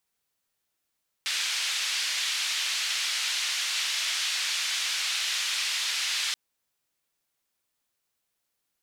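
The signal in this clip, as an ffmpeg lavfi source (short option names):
-f lavfi -i "anoisesrc=c=white:d=5.08:r=44100:seed=1,highpass=f=2300,lowpass=f=4400,volume=-14.5dB"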